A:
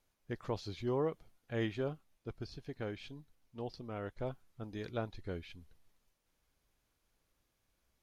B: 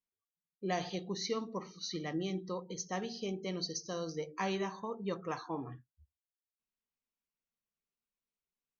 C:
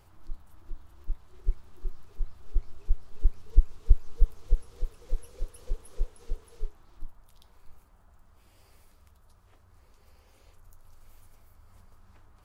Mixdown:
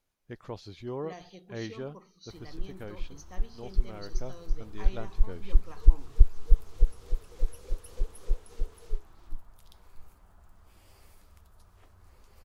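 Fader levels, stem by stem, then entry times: −2.0, −11.0, +2.0 decibels; 0.00, 0.40, 2.30 seconds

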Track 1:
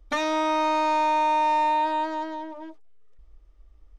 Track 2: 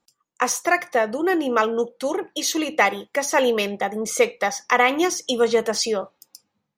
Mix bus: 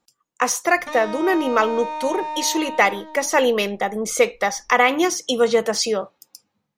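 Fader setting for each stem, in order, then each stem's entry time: −6.5, +1.5 decibels; 0.75, 0.00 seconds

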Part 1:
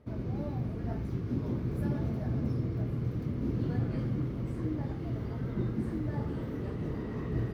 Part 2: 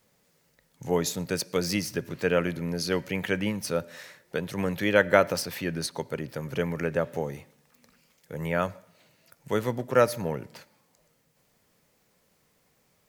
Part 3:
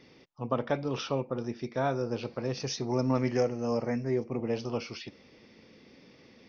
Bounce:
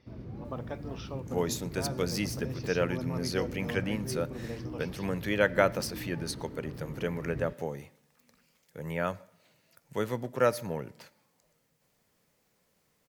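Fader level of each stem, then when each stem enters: −7.5, −4.5, −10.0 decibels; 0.00, 0.45, 0.00 seconds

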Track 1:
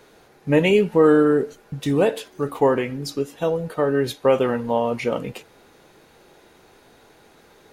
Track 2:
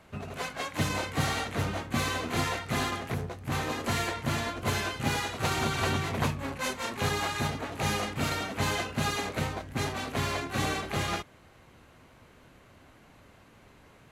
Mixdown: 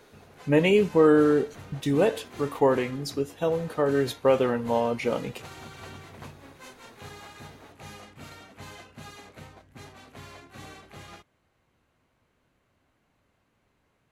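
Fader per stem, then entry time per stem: −3.5, −15.0 decibels; 0.00, 0.00 seconds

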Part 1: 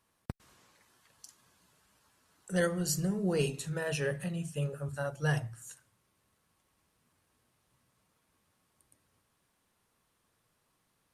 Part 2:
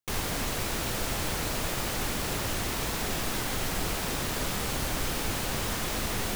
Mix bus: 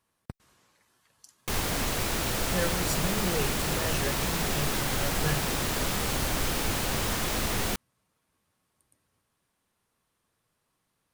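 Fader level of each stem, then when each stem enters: −1.5, +2.0 decibels; 0.00, 1.40 seconds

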